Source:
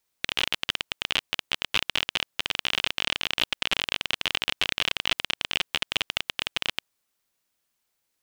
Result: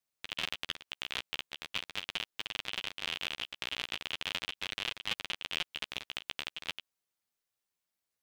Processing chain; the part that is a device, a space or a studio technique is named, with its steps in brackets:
alien voice (ring modulation 170 Hz; flanger 0.41 Hz, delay 8.4 ms, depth 6.7 ms, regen +1%)
level −4.5 dB

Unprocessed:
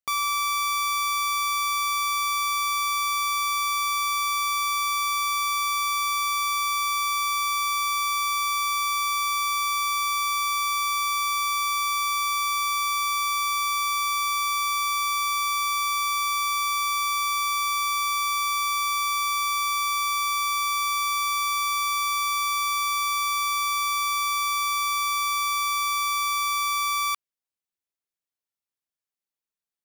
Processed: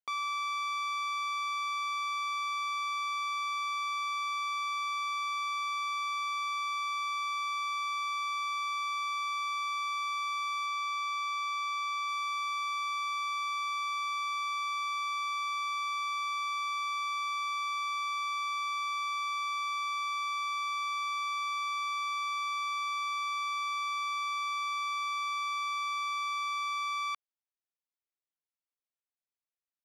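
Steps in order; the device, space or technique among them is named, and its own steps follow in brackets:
0:10.66–0:12.09: high-shelf EQ 11,000 Hz −5.5 dB
early digital voice recorder (band-pass filter 280–3,900 Hz; one scale factor per block 7 bits)
level −7.5 dB

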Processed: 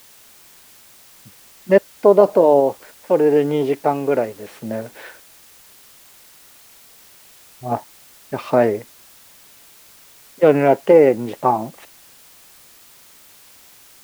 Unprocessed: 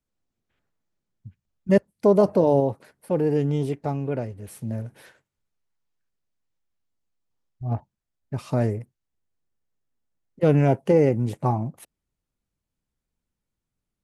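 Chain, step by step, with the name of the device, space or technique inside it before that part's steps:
dictaphone (band-pass filter 380–3,000 Hz; automatic gain control gain up to 14 dB; tape wow and flutter 28 cents; white noise bed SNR 27 dB)

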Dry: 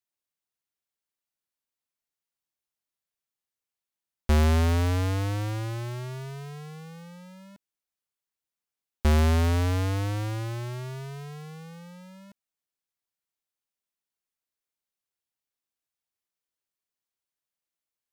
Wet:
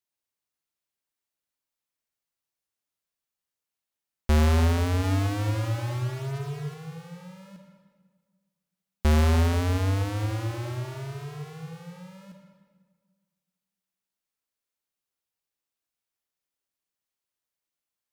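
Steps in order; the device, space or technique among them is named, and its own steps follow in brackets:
compressed reverb return (on a send at −4 dB: convolution reverb RT60 1.6 s, pre-delay 45 ms + downward compressor, threshold −25 dBFS, peak gain reduction 8.5 dB)
0:05.03–0:06.74: on the sum: comb filter 7.2 ms, depth 67%

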